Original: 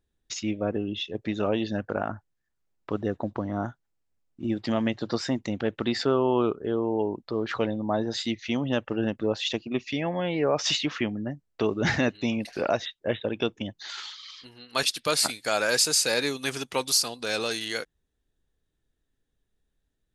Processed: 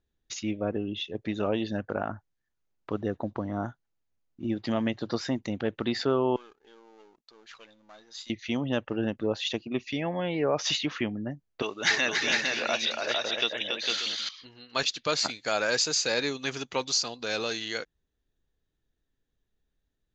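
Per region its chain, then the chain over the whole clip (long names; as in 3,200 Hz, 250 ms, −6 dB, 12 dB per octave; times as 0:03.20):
0:06.36–0:08.30: gain on one half-wave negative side −7 dB + first-order pre-emphasis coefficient 0.97
0:11.62–0:14.29: meter weighting curve ITU-R 468 + multi-tap delay 282/454/586/674 ms −5/−3.5/−12.5/−17 dB + bad sample-rate conversion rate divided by 3×, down none, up hold
whole clip: Butterworth low-pass 7,100 Hz 96 dB per octave; notch filter 5,300 Hz, Q 20; level −2 dB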